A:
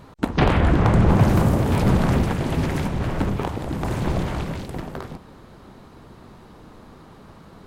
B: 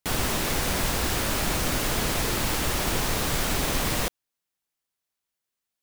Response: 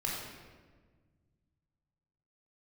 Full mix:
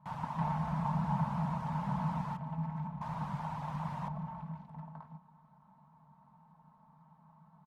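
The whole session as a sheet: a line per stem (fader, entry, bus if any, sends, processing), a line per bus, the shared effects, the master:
-9.0 dB, 0.00 s, no send, comb 4.6 ms, depth 76%
-1.0 dB, 0.00 s, muted 2.37–3.01, no send, reverb removal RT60 0.52 s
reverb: off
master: double band-pass 380 Hz, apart 2.6 oct; bell 630 Hz +3 dB 0.77 oct

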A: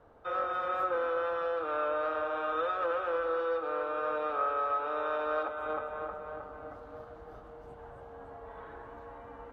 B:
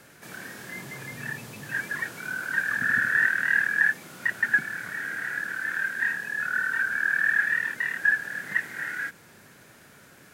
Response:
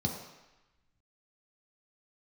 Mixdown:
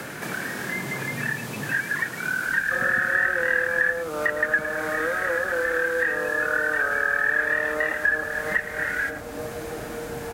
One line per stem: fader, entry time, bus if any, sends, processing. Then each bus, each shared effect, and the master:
+1.0 dB, 2.45 s, no send, no echo send, tilt shelf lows +8.5 dB, about 690 Hz
+1.5 dB, 0.00 s, no send, echo send -14 dB, dry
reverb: off
echo: echo 0.109 s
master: three-band squash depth 70%

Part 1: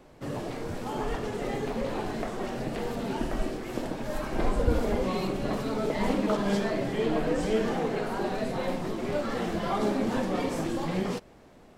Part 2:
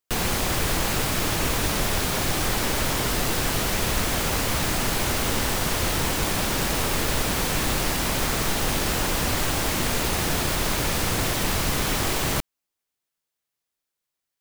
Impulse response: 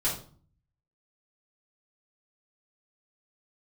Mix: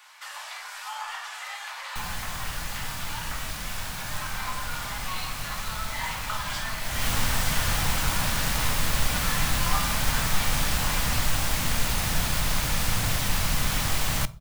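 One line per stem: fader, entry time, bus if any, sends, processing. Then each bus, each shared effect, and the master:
0.0 dB, 0.00 s, send -6 dB, inverse Chebyshev high-pass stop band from 360 Hz, stop band 50 dB
6.78 s -12 dB -> 7.07 s -2.5 dB, 1.85 s, send -21.5 dB, low shelf 200 Hz +4 dB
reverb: on, RT60 0.45 s, pre-delay 3 ms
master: bell 370 Hz -13.5 dB 1.1 oct; mismatched tape noise reduction encoder only

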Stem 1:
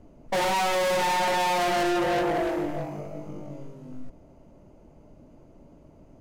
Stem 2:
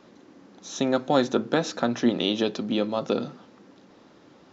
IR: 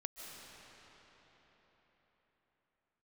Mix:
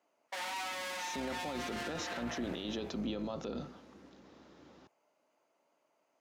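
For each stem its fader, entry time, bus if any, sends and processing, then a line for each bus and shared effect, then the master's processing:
-7.5 dB, 0.00 s, no send, HPF 1100 Hz 12 dB/oct; high shelf 8900 Hz -3.5 dB
-5.0 dB, 0.35 s, no send, octaver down 2 oct, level -4 dB; limiter -15.5 dBFS, peak gain reduction 8 dB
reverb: off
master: HPF 100 Hz 12 dB/oct; limiter -29.5 dBFS, peak gain reduction 11.5 dB

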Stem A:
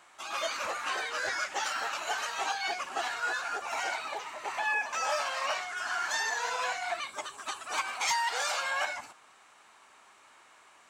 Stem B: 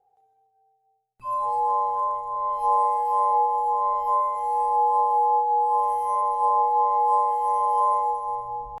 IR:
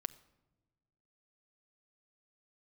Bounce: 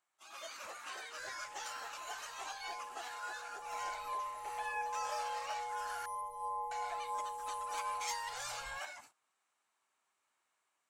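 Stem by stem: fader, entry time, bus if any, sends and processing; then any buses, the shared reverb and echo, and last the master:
-17.5 dB, 0.00 s, muted 6.06–6.71, no send, AGC gain up to 4 dB
3.57 s -14 dB -> 3.78 s -5.5 dB, 0.00 s, no send, bell 660 Hz -13 dB 1.6 oct; flange 0.34 Hz, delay 4.6 ms, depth 2.4 ms, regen -77%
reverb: off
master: gate -59 dBFS, range -12 dB; high shelf 7300 Hz +11 dB

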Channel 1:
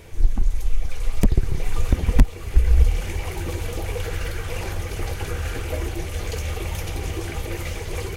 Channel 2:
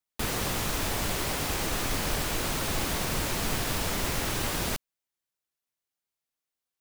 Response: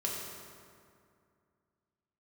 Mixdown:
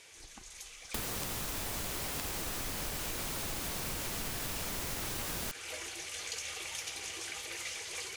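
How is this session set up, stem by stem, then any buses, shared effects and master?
-11.5 dB, 0.00 s, no send, weighting filter ITU-R 468
-1.5 dB, 0.75 s, no send, high shelf 5700 Hz +6.5 dB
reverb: off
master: compressor 10:1, threshold -34 dBFS, peak gain reduction 10.5 dB

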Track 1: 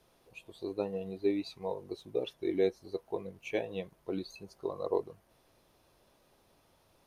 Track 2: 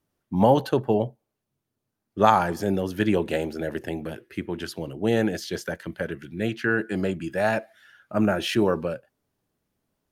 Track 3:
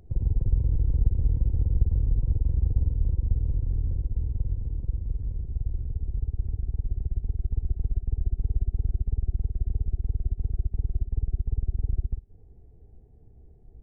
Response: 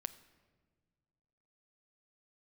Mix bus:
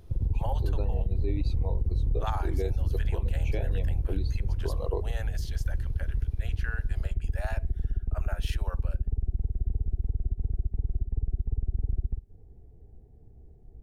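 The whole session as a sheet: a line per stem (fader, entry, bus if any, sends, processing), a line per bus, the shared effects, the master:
-0.5 dB, 0.00 s, no send, dry
-11.5 dB, 0.00 s, no send, inverse Chebyshev high-pass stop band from 180 Hz, stop band 60 dB; high shelf 7500 Hz +6.5 dB
+0.5 dB, 0.00 s, no send, dry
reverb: off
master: limiter -19 dBFS, peak gain reduction 10 dB

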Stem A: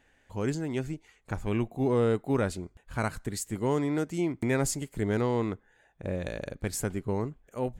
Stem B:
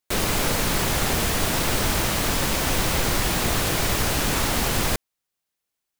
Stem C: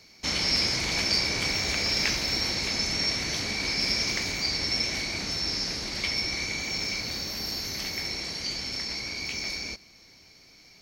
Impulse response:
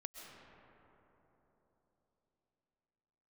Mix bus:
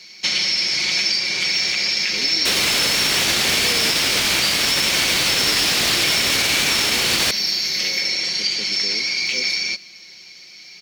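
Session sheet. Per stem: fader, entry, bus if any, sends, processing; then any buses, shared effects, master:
-4.5 dB, 1.75 s, no send, elliptic band-pass 190–550 Hz
+1.0 dB, 2.35 s, no send, dry
+2.0 dB, 0.00 s, no send, compressor 5:1, threshold -29 dBFS, peak gain reduction 8 dB; comb 5.5 ms, depth 64%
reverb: off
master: weighting filter D; limiter -8.5 dBFS, peak gain reduction 5.5 dB

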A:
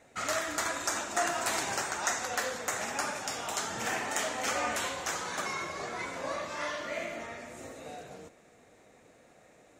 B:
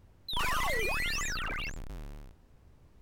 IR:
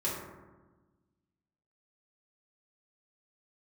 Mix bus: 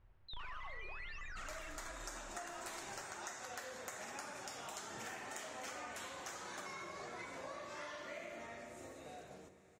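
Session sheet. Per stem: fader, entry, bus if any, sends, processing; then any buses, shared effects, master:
-9.5 dB, 1.20 s, send -14 dB, dry
-5.0 dB, 0.00 s, send -13 dB, LPF 2300 Hz 12 dB/oct; bell 230 Hz -13.5 dB 2.8 oct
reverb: on, RT60 1.3 s, pre-delay 3 ms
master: compressor, threshold -44 dBFS, peak gain reduction 11 dB

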